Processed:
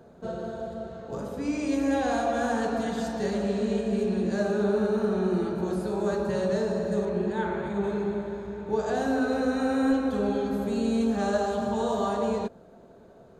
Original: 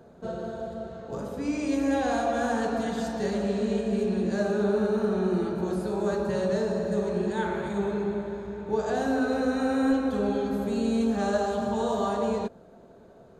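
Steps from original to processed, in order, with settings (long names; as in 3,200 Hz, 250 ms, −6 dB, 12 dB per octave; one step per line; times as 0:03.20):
0:07.05–0:07.84: high-shelf EQ 4,900 Hz −11.5 dB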